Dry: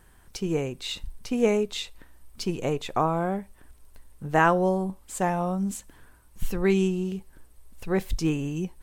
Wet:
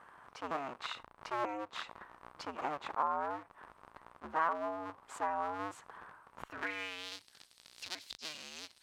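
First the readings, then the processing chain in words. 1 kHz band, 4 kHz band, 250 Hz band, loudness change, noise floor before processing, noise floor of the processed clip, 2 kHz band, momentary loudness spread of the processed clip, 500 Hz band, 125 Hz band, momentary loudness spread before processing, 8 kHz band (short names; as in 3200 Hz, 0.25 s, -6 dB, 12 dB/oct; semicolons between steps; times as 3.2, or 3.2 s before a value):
-7.0 dB, -8.0 dB, -22.0 dB, -12.5 dB, -55 dBFS, -67 dBFS, -9.0 dB, 20 LU, -16.5 dB, -30.0 dB, 14 LU, -13.5 dB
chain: cycle switcher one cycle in 2, inverted; compressor 8:1, threshold -34 dBFS, peak gain reduction 18.5 dB; band-pass sweep 1100 Hz -> 4400 Hz, 6.43–7.16; attack slew limiter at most 410 dB/s; gain +10.5 dB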